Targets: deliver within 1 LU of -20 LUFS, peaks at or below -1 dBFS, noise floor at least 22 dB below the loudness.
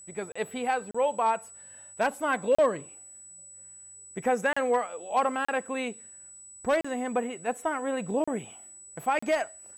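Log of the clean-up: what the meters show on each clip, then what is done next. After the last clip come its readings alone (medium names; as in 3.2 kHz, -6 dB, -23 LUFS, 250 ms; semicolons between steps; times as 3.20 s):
dropouts 8; longest dropout 35 ms; steady tone 7.9 kHz; tone level -46 dBFS; loudness -29.0 LUFS; peak level -15.5 dBFS; loudness target -20.0 LUFS
-> interpolate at 0.32/0.91/2.55/4.53/5.45/6.81/8.24/9.19 s, 35 ms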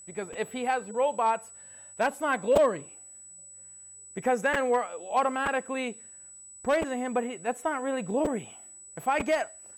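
dropouts 0; steady tone 7.9 kHz; tone level -46 dBFS
-> band-stop 7.9 kHz, Q 30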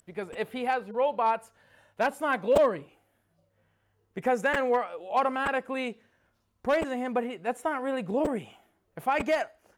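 steady tone not found; loudness -28.5 LUFS; peak level -11.0 dBFS; loudness target -20.0 LUFS
-> trim +8.5 dB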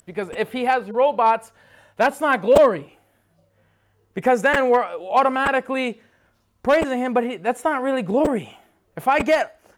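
loudness -20.0 LUFS; peak level -2.5 dBFS; noise floor -65 dBFS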